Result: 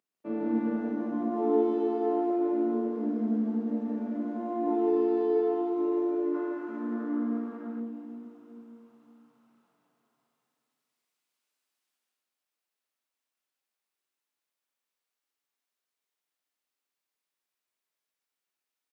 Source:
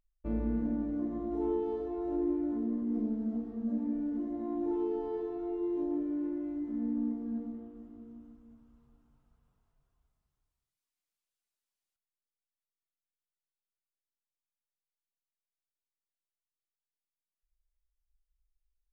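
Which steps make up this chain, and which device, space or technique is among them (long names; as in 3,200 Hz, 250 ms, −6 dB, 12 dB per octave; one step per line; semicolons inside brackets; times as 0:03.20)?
stadium PA (high-pass filter 210 Hz 24 dB per octave; parametric band 1,700 Hz +4 dB 3 octaves; loudspeakers that aren't time-aligned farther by 51 metres −3 dB, 70 metres −2 dB; convolution reverb RT60 2.2 s, pre-delay 14 ms, DRR −1 dB)
0:06.34–0:07.80: parametric band 1,300 Hz +10.5 dB 0.94 octaves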